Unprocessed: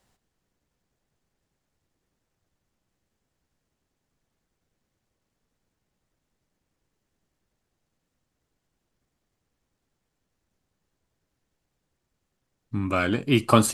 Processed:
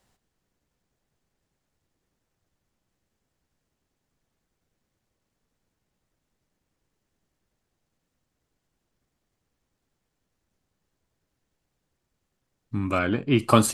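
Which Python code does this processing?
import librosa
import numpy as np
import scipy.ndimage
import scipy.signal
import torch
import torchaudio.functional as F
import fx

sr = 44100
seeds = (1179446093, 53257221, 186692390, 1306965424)

y = fx.bessel_lowpass(x, sr, hz=2600.0, order=2, at=(12.98, 13.38), fade=0.02)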